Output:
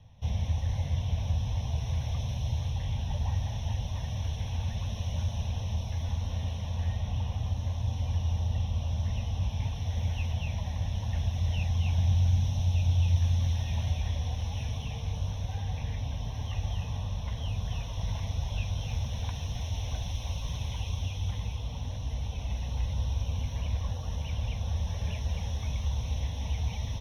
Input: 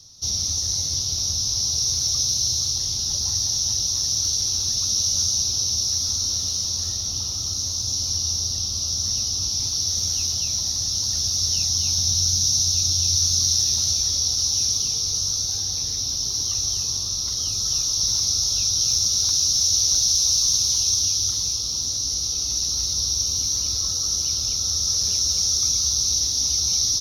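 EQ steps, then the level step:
high-frequency loss of the air 330 metres
flat-topped bell 5,200 Hz −10 dB 1.1 octaves
phaser with its sweep stopped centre 1,300 Hz, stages 6
+7.5 dB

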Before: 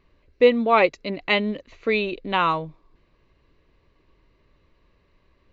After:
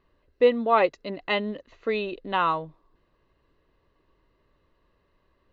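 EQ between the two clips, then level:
low-shelf EQ 380 Hz −7.5 dB
high-shelf EQ 2,600 Hz −9 dB
notch filter 2,300 Hz, Q 5.5
0.0 dB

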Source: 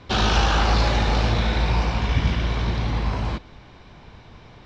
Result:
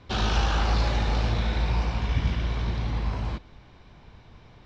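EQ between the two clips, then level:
low-shelf EQ 120 Hz +4.5 dB
−7.0 dB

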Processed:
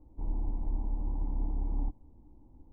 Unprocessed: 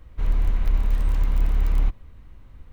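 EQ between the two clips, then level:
dynamic equaliser 370 Hz, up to −4 dB, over −48 dBFS, Q 1.1
formant resonators in series u
parametric band 800 Hz +7 dB 1.5 octaves
+3.5 dB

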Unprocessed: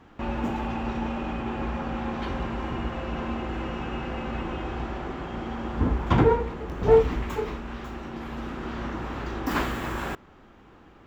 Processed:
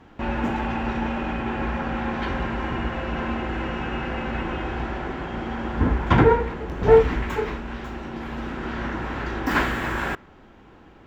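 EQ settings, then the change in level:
notch filter 1,200 Hz, Q 12
dynamic equaliser 1,700 Hz, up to +6 dB, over −45 dBFS, Q 1.3
high-shelf EQ 8,600 Hz −5.5 dB
+3.0 dB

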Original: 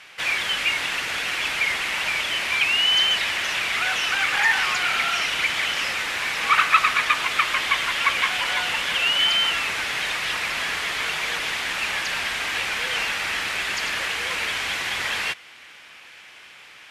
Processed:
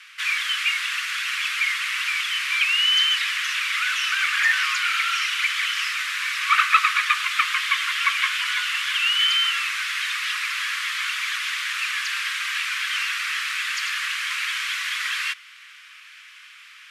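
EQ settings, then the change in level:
Butterworth high-pass 1,100 Hz 72 dB per octave
0.0 dB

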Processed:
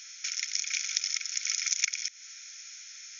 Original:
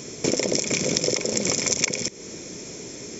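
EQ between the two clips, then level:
linear-phase brick-wall band-pass 1,300–7,000 Hz
−4.5 dB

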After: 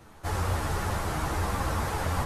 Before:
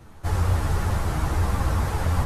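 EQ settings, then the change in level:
low-shelf EQ 180 Hz −9.5 dB
0.0 dB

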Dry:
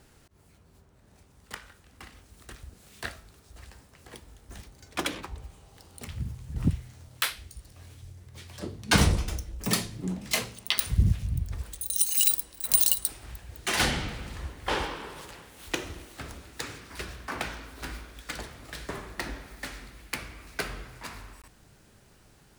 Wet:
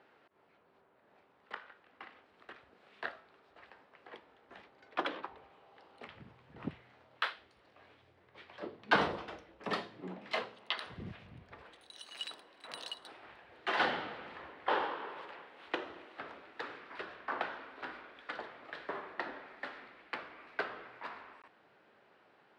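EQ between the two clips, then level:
dynamic equaliser 2,300 Hz, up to −7 dB, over −50 dBFS, Q 3.1
band-pass filter 490–6,800 Hz
high-frequency loss of the air 450 metres
+2.0 dB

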